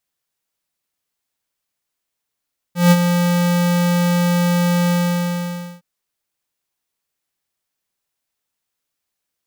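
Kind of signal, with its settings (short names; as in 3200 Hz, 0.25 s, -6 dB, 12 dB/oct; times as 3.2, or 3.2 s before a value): ADSR square 175 Hz, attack 0.161 s, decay 45 ms, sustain -7.5 dB, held 2.15 s, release 0.913 s -8.5 dBFS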